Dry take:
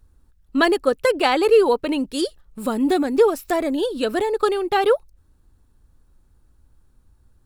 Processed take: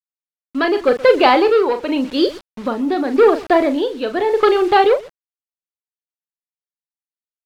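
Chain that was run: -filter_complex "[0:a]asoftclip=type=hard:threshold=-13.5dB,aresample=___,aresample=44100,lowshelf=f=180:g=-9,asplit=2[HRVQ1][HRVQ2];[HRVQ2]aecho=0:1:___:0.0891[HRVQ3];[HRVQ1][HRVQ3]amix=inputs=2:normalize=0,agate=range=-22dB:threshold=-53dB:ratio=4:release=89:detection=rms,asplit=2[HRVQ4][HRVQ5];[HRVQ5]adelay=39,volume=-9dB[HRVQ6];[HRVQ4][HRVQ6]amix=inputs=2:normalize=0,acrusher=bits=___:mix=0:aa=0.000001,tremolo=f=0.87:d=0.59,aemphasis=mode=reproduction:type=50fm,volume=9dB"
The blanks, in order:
11025, 127, 6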